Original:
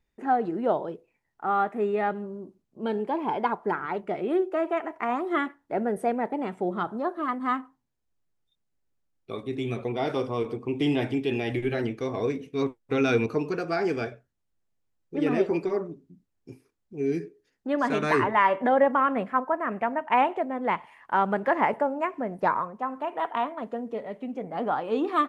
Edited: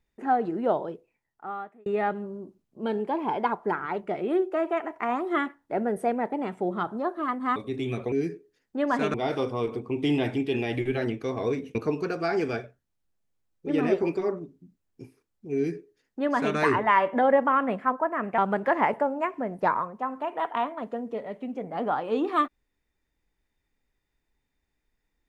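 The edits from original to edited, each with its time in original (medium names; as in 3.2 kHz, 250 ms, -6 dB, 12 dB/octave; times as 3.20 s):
0.83–1.86 s: fade out linear
7.56–9.35 s: delete
12.52–13.23 s: delete
17.03–18.05 s: copy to 9.91 s
19.86–21.18 s: delete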